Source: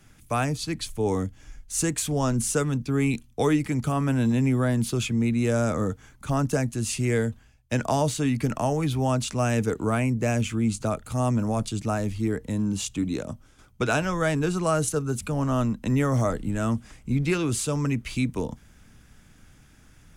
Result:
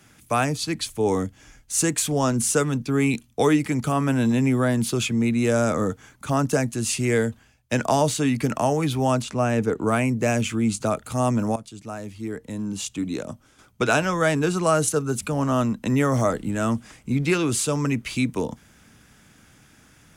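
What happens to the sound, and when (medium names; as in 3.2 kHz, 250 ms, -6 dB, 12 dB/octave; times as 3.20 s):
9.22–9.87 s: treble shelf 2.6 kHz -10 dB
11.56–13.89 s: fade in, from -15.5 dB
whole clip: high-pass 180 Hz 6 dB/octave; trim +4.5 dB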